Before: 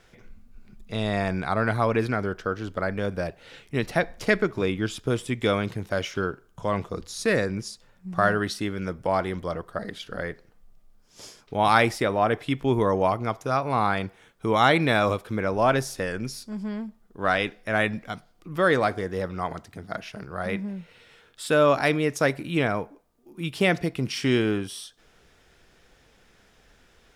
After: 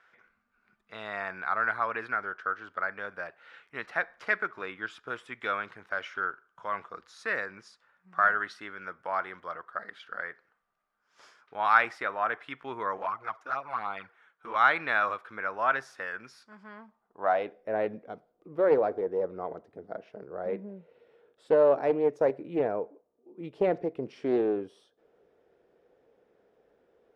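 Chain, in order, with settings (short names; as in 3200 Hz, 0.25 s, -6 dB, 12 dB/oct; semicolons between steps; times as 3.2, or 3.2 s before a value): band-pass sweep 1400 Hz -> 470 Hz, 16.66–17.71; 12.97–14.56 envelope flanger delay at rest 8.2 ms, full sweep at -24 dBFS; Doppler distortion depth 0.2 ms; gain +2 dB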